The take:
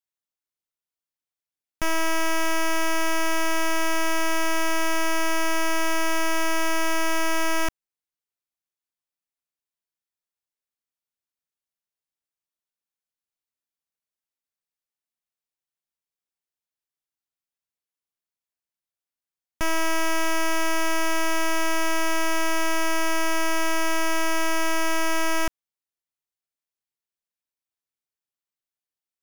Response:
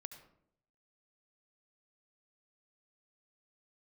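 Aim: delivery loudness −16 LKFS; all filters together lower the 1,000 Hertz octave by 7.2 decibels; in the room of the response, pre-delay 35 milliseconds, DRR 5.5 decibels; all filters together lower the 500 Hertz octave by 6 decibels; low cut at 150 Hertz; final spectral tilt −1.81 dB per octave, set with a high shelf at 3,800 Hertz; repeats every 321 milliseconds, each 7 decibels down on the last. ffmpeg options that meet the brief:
-filter_complex "[0:a]highpass=150,equalizer=frequency=500:width_type=o:gain=-5.5,equalizer=frequency=1000:width_type=o:gain=-7,highshelf=frequency=3800:gain=-7.5,aecho=1:1:321|642|963|1284|1605:0.447|0.201|0.0905|0.0407|0.0183,asplit=2[link_01][link_02];[1:a]atrim=start_sample=2205,adelay=35[link_03];[link_02][link_03]afir=irnorm=-1:irlink=0,volume=-0.5dB[link_04];[link_01][link_04]amix=inputs=2:normalize=0,volume=8.5dB"

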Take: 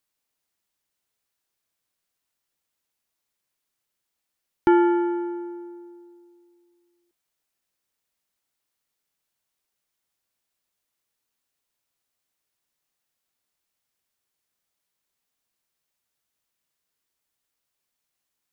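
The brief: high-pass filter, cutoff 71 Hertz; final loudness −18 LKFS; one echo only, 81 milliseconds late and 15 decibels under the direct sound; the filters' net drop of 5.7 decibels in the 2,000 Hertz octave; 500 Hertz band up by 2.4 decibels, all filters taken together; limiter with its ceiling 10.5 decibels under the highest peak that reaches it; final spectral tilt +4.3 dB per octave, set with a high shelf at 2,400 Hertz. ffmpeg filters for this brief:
ffmpeg -i in.wav -af "highpass=71,equalizer=frequency=500:width_type=o:gain=5.5,equalizer=frequency=2000:width_type=o:gain=-5.5,highshelf=frequency=2400:gain=-6.5,alimiter=limit=-16dB:level=0:latency=1,aecho=1:1:81:0.178,volume=7dB" out.wav

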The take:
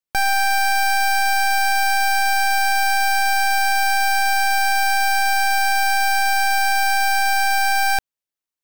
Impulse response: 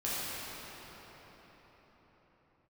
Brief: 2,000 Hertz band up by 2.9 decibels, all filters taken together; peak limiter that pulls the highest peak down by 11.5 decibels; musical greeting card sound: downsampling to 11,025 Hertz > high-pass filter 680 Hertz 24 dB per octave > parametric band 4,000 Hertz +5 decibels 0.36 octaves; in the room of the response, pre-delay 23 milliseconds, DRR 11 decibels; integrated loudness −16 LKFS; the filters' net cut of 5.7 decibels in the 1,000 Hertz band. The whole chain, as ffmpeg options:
-filter_complex "[0:a]equalizer=frequency=1000:width_type=o:gain=-8,equalizer=frequency=2000:width_type=o:gain=7.5,alimiter=limit=-22.5dB:level=0:latency=1,asplit=2[link_01][link_02];[1:a]atrim=start_sample=2205,adelay=23[link_03];[link_02][link_03]afir=irnorm=-1:irlink=0,volume=-19dB[link_04];[link_01][link_04]amix=inputs=2:normalize=0,aresample=11025,aresample=44100,highpass=frequency=680:width=0.5412,highpass=frequency=680:width=1.3066,equalizer=frequency=4000:width_type=o:width=0.36:gain=5,volume=11dB"

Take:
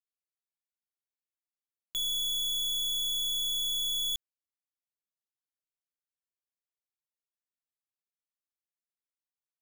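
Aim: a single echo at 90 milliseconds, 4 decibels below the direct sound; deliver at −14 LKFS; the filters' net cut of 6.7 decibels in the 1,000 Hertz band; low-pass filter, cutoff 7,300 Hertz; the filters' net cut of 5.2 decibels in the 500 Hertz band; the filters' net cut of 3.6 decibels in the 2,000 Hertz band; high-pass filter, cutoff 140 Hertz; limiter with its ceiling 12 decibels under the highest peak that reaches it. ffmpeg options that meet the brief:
ffmpeg -i in.wav -af "highpass=140,lowpass=7300,equalizer=frequency=500:width_type=o:gain=-5,equalizer=frequency=1000:width_type=o:gain=-6.5,equalizer=frequency=2000:width_type=o:gain=-3,alimiter=level_in=17dB:limit=-24dB:level=0:latency=1,volume=-17dB,aecho=1:1:90:0.631,volume=24.5dB" out.wav

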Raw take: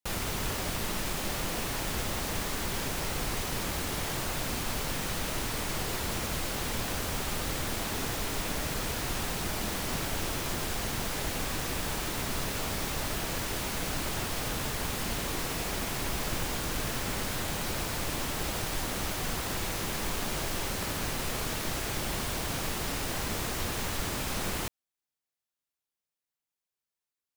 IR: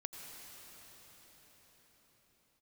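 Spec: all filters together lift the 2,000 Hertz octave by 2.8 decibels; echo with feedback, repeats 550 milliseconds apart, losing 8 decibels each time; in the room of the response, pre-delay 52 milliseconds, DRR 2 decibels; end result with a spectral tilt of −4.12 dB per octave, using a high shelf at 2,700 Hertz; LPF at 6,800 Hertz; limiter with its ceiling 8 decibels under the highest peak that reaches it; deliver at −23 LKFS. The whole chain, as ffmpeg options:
-filter_complex "[0:a]lowpass=6800,equalizer=frequency=2000:width_type=o:gain=6,highshelf=frequency=2700:gain=-6,alimiter=level_in=3dB:limit=-24dB:level=0:latency=1,volume=-3dB,aecho=1:1:550|1100|1650|2200|2750:0.398|0.159|0.0637|0.0255|0.0102,asplit=2[link_01][link_02];[1:a]atrim=start_sample=2205,adelay=52[link_03];[link_02][link_03]afir=irnorm=-1:irlink=0,volume=-0.5dB[link_04];[link_01][link_04]amix=inputs=2:normalize=0,volume=11dB"

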